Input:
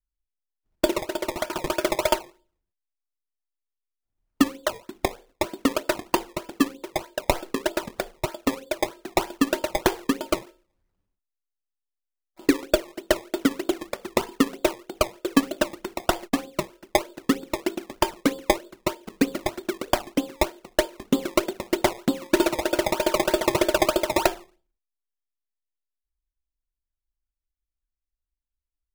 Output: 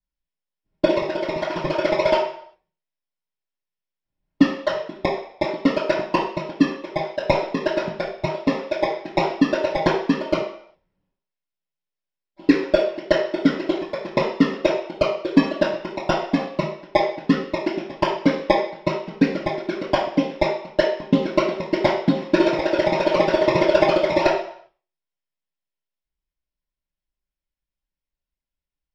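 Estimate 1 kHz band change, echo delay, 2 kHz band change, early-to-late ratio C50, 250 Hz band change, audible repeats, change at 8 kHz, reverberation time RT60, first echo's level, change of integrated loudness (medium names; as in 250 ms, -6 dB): +3.5 dB, no echo, +3.0 dB, 5.0 dB, +4.5 dB, no echo, under -10 dB, 0.60 s, no echo, +4.0 dB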